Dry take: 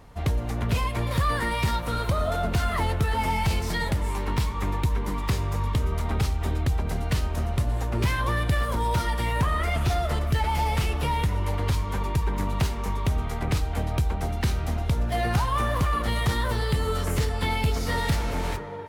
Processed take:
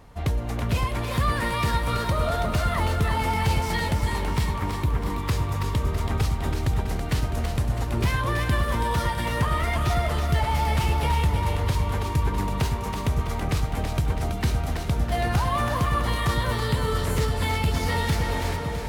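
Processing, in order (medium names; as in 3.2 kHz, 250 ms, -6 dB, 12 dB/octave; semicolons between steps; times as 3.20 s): 4.60–5.10 s: peaking EQ 6.3 kHz -9.5 dB 1.6 oct; on a send: two-band feedback delay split 320 Hz, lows 559 ms, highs 328 ms, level -5.5 dB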